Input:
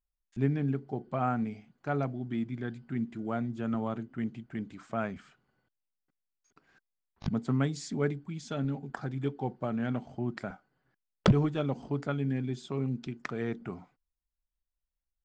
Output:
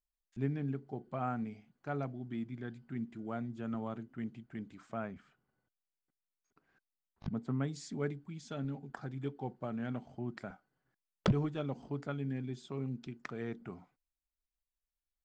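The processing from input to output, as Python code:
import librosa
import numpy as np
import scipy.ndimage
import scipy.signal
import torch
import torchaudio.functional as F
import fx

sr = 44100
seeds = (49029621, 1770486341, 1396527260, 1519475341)

y = fx.high_shelf(x, sr, hz=3000.0, db=-9.0, at=(4.98, 7.68))
y = F.gain(torch.from_numpy(y), -6.5).numpy()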